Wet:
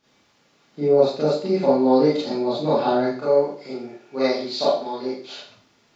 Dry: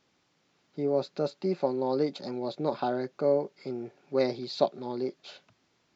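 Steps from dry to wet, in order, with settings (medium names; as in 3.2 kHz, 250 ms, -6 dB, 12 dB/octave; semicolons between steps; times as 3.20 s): 3.18–5.24 s: bass shelf 390 Hz -10 dB; Schroeder reverb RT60 0.49 s, combs from 27 ms, DRR -10 dB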